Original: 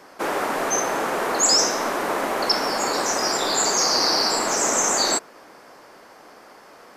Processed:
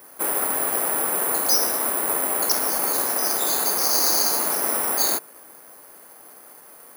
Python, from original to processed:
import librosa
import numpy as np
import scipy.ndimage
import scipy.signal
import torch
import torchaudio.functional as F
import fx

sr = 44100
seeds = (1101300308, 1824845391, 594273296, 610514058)

y = (np.kron(scipy.signal.resample_poly(x, 1, 4), np.eye(4)[0]) * 4)[:len(x)]
y = y * librosa.db_to_amplitude(-5.0)